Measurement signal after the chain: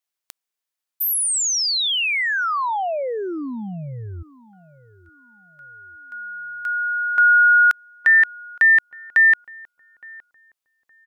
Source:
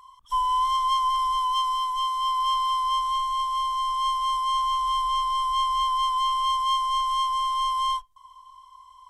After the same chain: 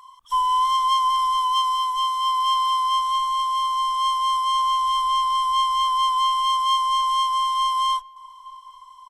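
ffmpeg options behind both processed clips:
-filter_complex "[0:a]lowshelf=f=330:g=-12,asplit=2[a][b];[b]adelay=866,lowpass=f=960:p=1,volume=-20dB,asplit=2[c][d];[d]adelay=866,lowpass=f=960:p=1,volume=0.35,asplit=2[e][f];[f]adelay=866,lowpass=f=960:p=1,volume=0.35[g];[a][c][e][g]amix=inputs=4:normalize=0,volume=4.5dB"

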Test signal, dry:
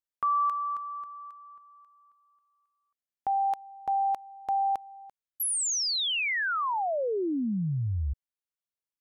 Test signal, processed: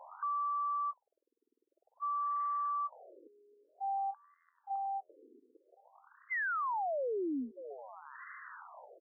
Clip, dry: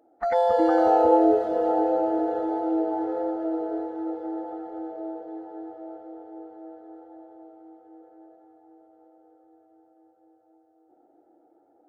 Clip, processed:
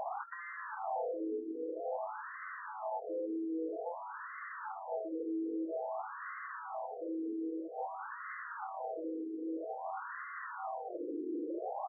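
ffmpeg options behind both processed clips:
-filter_complex "[0:a]aeval=exprs='val(0)+0.5*0.075*sgn(val(0))':c=same,equalizer=f=3k:w=0.3:g=5.5,asplit=2[a][b];[b]adelay=707,lowpass=f=1k:p=1,volume=-9.5dB,asplit=2[c][d];[d]adelay=707,lowpass=f=1k:p=1,volume=0.34,asplit=2[e][f];[f]adelay=707,lowpass=f=1k:p=1,volume=0.34,asplit=2[g][h];[h]adelay=707,lowpass=f=1k:p=1,volume=0.34[i];[c][e][g][i]amix=inputs=4:normalize=0[j];[a][j]amix=inputs=2:normalize=0,acompressor=threshold=-30dB:ratio=2,asoftclip=type=tanh:threshold=-33dB,afftfilt=real='re*between(b*sr/1024,330*pow(1500/330,0.5+0.5*sin(2*PI*0.51*pts/sr))/1.41,330*pow(1500/330,0.5+0.5*sin(2*PI*0.51*pts/sr))*1.41)':imag='im*between(b*sr/1024,330*pow(1500/330,0.5+0.5*sin(2*PI*0.51*pts/sr))/1.41,330*pow(1500/330,0.5+0.5*sin(2*PI*0.51*pts/sr))*1.41)':win_size=1024:overlap=0.75"

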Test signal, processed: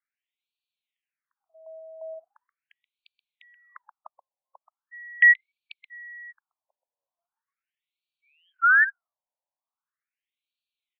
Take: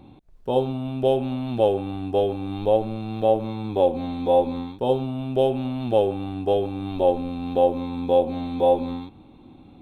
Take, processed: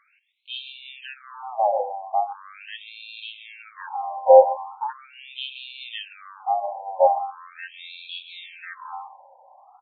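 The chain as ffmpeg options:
-filter_complex "[0:a]highpass=310,asplit=2[a][b];[b]adelay=128.3,volume=-12dB,highshelf=f=4k:g=-2.89[c];[a][c]amix=inputs=2:normalize=0,asplit=2[d][e];[e]acontrast=80,volume=1.5dB[f];[d][f]amix=inputs=2:normalize=0,afftfilt=real='re*between(b*sr/1024,720*pow(3300/720,0.5+0.5*sin(2*PI*0.4*pts/sr))/1.41,720*pow(3300/720,0.5+0.5*sin(2*PI*0.4*pts/sr))*1.41)':imag='im*between(b*sr/1024,720*pow(3300/720,0.5+0.5*sin(2*PI*0.4*pts/sr))/1.41,720*pow(3300/720,0.5+0.5*sin(2*PI*0.4*pts/sr))*1.41)':win_size=1024:overlap=0.75,volume=-2dB"

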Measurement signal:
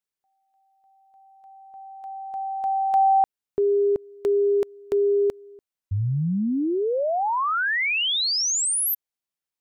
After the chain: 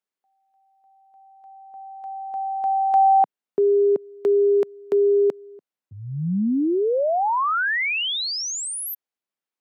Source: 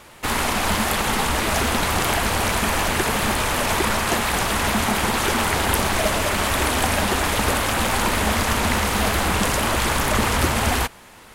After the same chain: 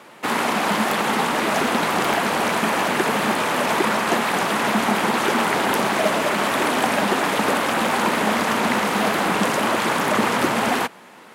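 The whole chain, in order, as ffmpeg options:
-af "highpass=f=170:w=0.5412,highpass=f=170:w=1.3066,aeval=exprs='(mod(2.11*val(0)+1,2)-1)/2.11':c=same,highshelf=f=3.5k:g=-10,volume=3dB"

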